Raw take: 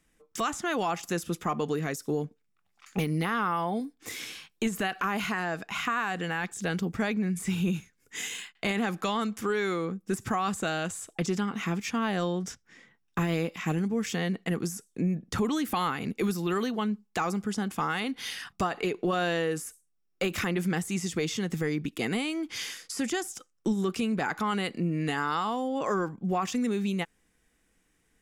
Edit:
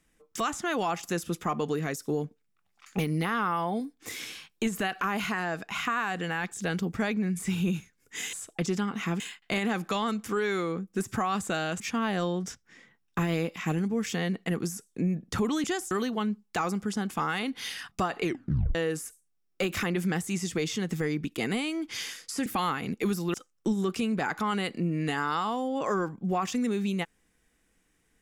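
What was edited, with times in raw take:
10.93–11.8 move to 8.33
15.64–16.52 swap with 23.07–23.34
18.84 tape stop 0.52 s

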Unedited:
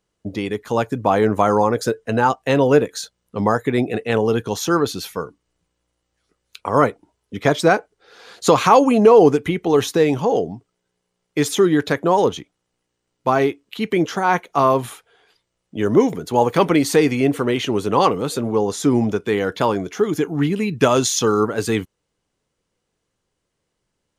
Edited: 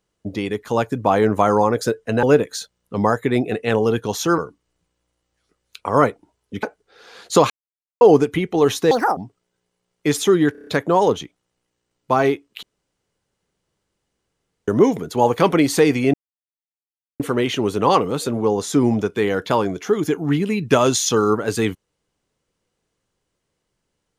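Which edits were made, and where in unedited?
2.23–2.65 cut
4.8–5.18 cut
7.43–7.75 cut
8.62–9.13 mute
10.03–10.48 speed 175%
11.83 stutter 0.03 s, 6 plays
13.79–15.84 room tone
17.3 insert silence 1.06 s

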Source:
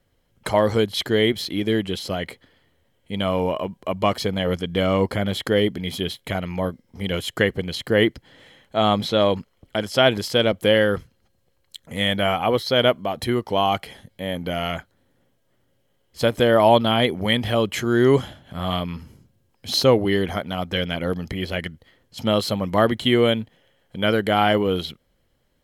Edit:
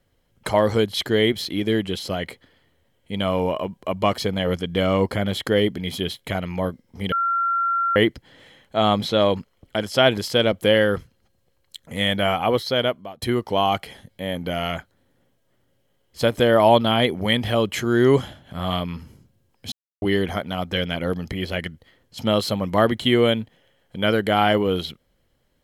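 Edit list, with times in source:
7.12–7.96 bleep 1370 Hz -18.5 dBFS
12.57–13.22 fade out, to -19 dB
19.72–20.02 mute

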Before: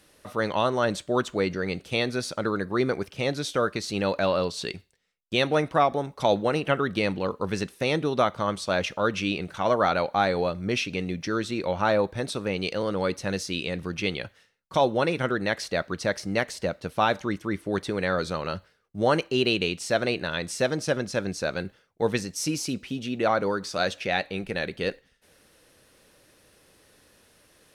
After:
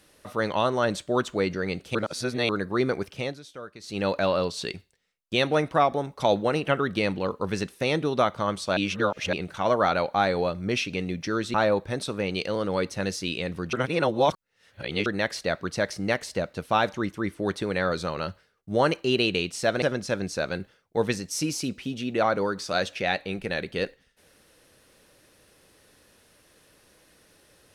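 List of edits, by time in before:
1.95–2.49 reverse
3.14–4.05 dip -15.5 dB, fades 0.26 s
8.77–9.33 reverse
11.54–11.81 cut
14–15.33 reverse
20.09–20.87 cut

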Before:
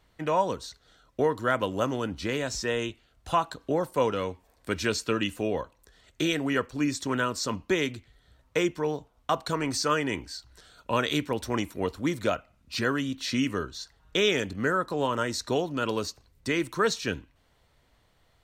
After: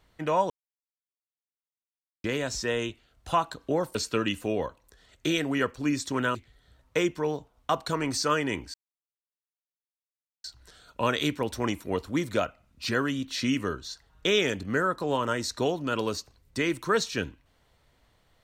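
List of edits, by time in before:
0.5–2.24 mute
3.95–4.9 cut
7.3–7.95 cut
10.34 insert silence 1.70 s

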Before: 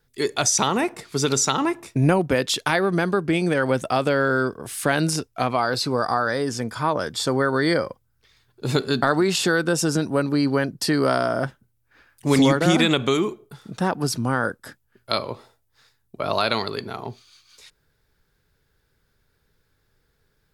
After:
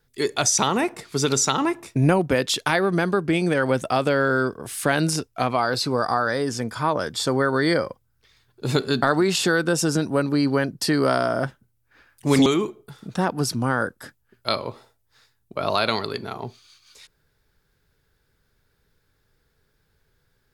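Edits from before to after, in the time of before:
12.46–13.09 cut

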